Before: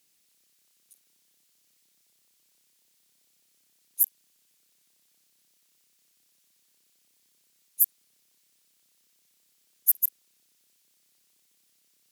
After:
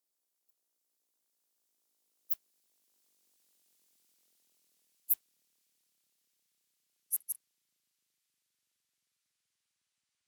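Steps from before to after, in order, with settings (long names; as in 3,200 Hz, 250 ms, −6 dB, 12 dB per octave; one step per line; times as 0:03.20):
gliding playback speed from 185% → 51%
source passing by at 0:03.76, 8 m/s, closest 9.2 metres
noise that follows the level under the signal 31 dB
level −3 dB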